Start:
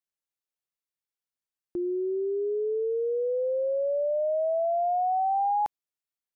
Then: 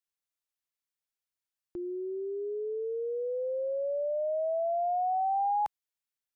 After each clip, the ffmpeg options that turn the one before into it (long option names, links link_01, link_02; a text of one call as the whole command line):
ffmpeg -i in.wav -af "equalizer=frequency=280:width_type=o:width=2.5:gain=-7.5" out.wav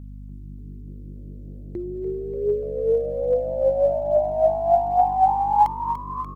ffmpeg -i in.wav -filter_complex "[0:a]aphaser=in_gain=1:out_gain=1:delay=2.3:decay=0.63:speed=1.2:type=triangular,aeval=exprs='val(0)+0.00631*(sin(2*PI*50*n/s)+sin(2*PI*2*50*n/s)/2+sin(2*PI*3*50*n/s)/3+sin(2*PI*4*50*n/s)/4+sin(2*PI*5*50*n/s)/5)':channel_layout=same,asplit=8[link_01][link_02][link_03][link_04][link_05][link_06][link_07][link_08];[link_02]adelay=292,afreqshift=95,volume=-10dB[link_09];[link_03]adelay=584,afreqshift=190,volume=-14.4dB[link_10];[link_04]adelay=876,afreqshift=285,volume=-18.9dB[link_11];[link_05]adelay=1168,afreqshift=380,volume=-23.3dB[link_12];[link_06]adelay=1460,afreqshift=475,volume=-27.7dB[link_13];[link_07]adelay=1752,afreqshift=570,volume=-32.2dB[link_14];[link_08]adelay=2044,afreqshift=665,volume=-36.6dB[link_15];[link_01][link_09][link_10][link_11][link_12][link_13][link_14][link_15]amix=inputs=8:normalize=0,volume=7.5dB" out.wav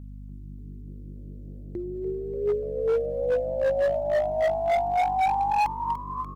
ffmpeg -i in.wav -af "asoftclip=type=hard:threshold=-17dB,volume=-2.5dB" out.wav